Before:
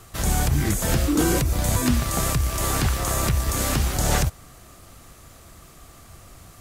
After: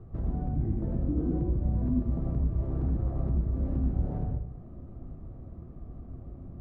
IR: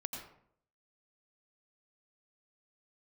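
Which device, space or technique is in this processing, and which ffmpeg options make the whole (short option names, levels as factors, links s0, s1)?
television next door: -filter_complex "[0:a]acompressor=threshold=0.0251:ratio=4,lowpass=360[s0];[1:a]atrim=start_sample=2205[s1];[s0][s1]afir=irnorm=-1:irlink=0,volume=1.88"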